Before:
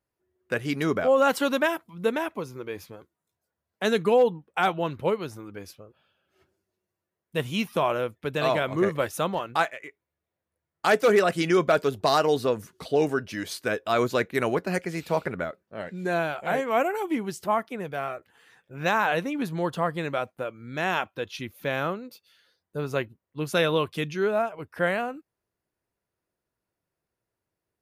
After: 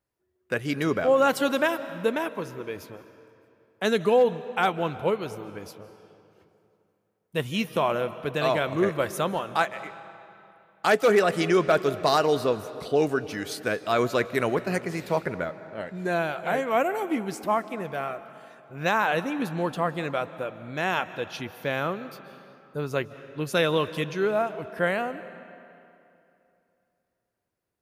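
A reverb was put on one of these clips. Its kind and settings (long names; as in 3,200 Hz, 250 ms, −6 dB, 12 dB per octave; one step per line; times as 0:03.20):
comb and all-pass reverb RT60 2.8 s, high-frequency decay 0.75×, pre-delay 115 ms, DRR 14 dB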